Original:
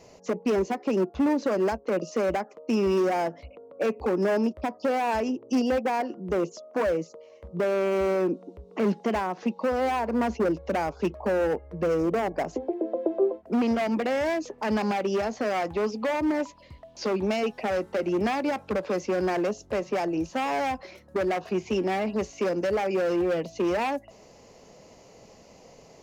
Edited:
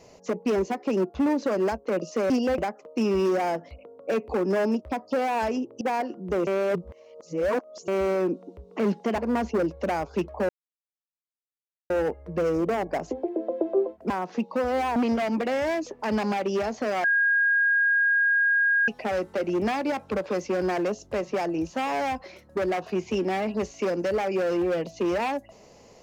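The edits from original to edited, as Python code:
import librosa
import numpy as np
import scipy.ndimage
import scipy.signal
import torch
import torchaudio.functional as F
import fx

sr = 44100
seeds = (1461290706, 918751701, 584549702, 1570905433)

y = fx.edit(x, sr, fx.move(start_s=5.53, length_s=0.28, to_s=2.3),
    fx.reverse_span(start_s=6.47, length_s=1.41),
    fx.move(start_s=9.18, length_s=0.86, to_s=13.55),
    fx.insert_silence(at_s=11.35, length_s=1.41),
    fx.bleep(start_s=15.63, length_s=1.84, hz=1630.0, db=-18.5), tone=tone)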